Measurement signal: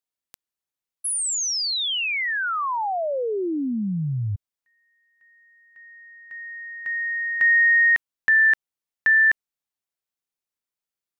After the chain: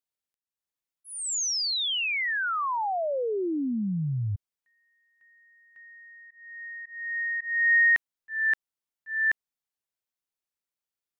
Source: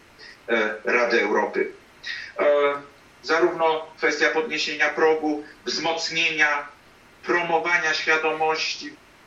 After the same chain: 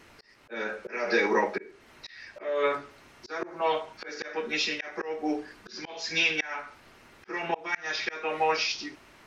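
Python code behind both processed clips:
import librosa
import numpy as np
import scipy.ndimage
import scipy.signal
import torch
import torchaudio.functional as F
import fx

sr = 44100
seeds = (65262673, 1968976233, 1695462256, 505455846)

y = fx.auto_swell(x, sr, attack_ms=332.0)
y = F.gain(torch.from_numpy(y), -3.0).numpy()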